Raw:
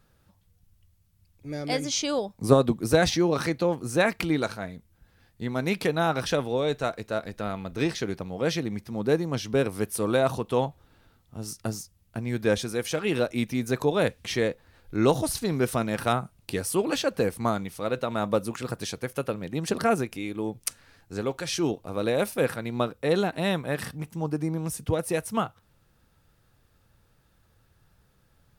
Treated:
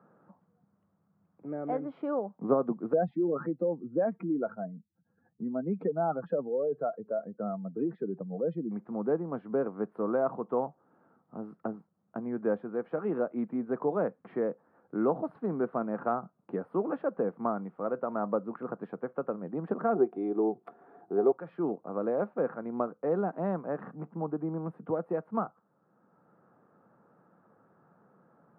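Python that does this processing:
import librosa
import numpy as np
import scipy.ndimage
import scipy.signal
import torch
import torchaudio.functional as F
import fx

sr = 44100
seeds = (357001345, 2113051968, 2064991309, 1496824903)

y = fx.spec_expand(x, sr, power=2.1, at=(2.93, 8.71))
y = fx.small_body(y, sr, hz=(390.0, 710.0, 3500.0), ring_ms=45, db=17, at=(19.95, 21.32))
y = scipy.signal.sosfilt(scipy.signal.ellip(3, 1.0, 60, [180.0, 1300.0], 'bandpass', fs=sr, output='sos'), y)
y = fx.peak_eq(y, sr, hz=730.0, db=3.5, octaves=0.25)
y = fx.band_squash(y, sr, depth_pct=40)
y = y * librosa.db_to_amplitude(-4.5)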